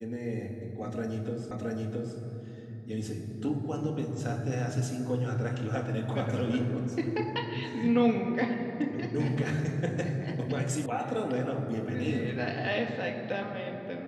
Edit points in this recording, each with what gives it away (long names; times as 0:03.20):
0:01.51: the same again, the last 0.67 s
0:10.86: cut off before it has died away